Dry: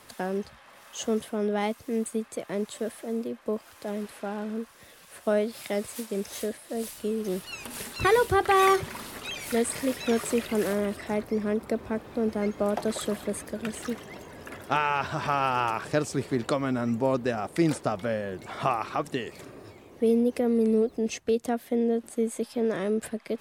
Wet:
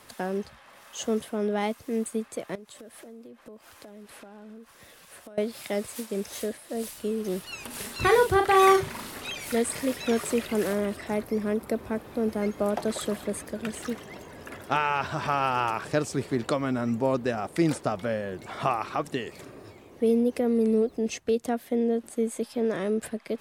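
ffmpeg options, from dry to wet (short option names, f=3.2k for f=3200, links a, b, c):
-filter_complex "[0:a]asettb=1/sr,asplit=3[a][b][c];[a]atrim=end=2.554[d];[b]atrim=start=2.55:end=5.38,asetpts=PTS-STARTPTS,afade=t=in:d=0.004:c=qsin,afade=t=out:st=2.826:d=0.004:c=qsin,acompressor=threshold=-42dB:ratio=12:attack=3.2:release=140:knee=1:detection=peak[e];[c]atrim=start=5.376[f];[d][e]acrossfade=d=0.004:c1=hsin:c2=qsin[g];[g][f]acrossfade=d=0.004:c1=qsin:c2=hsin,asettb=1/sr,asplit=3[h][i][j];[h]atrim=end=7.754[k];[i]atrim=start=7.75:end=9.32,asetpts=PTS-STARTPTS,afade=t=in:d=0.004:c=qsin,afade=t=out:st=1.566:d=0.004:c=qsin,asplit=2[l][m];[m]adelay=39,volume=-6dB[n];[l][n]amix=inputs=2:normalize=0,atrim=end_sample=69237[o];[j]atrim=start=9.316[p];[k][o]acrossfade=d=0.004:c1=hsin:c2=qsin[q];[q][p]acrossfade=d=0.004:c1=qsin:c2=hsin,asettb=1/sr,asplit=3[r][s][t];[r]atrim=end=11.124[u];[s]atrim=start=11.12:end=12.69,asetpts=PTS-STARTPTS,afade=t=in:d=0.004:c=qsin,afade=t=out:st=1.566:d=0.004:c=qsin,equalizer=f=12k:w=1.3:g=8[v];[t]atrim=start=12.686[w];[u][v]acrossfade=d=0.004:c1=hsin:c2=qsin[x];[x][w]acrossfade=d=0.004:c1=qsin:c2=hsin"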